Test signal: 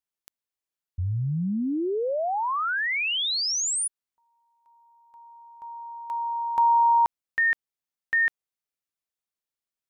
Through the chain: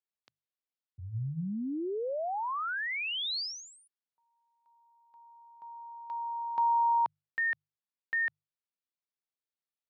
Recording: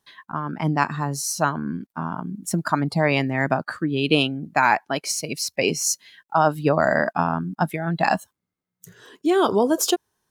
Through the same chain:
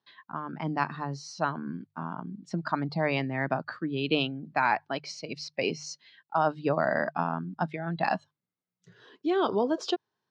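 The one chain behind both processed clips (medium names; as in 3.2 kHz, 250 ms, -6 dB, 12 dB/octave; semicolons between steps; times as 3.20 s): elliptic band-pass 110–4600 Hz, stop band 50 dB; hum notches 50/100/150 Hz; trim -7 dB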